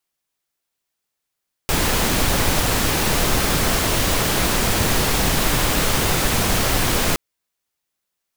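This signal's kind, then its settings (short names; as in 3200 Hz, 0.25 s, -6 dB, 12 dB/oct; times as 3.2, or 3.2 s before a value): noise pink, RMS -18.5 dBFS 5.47 s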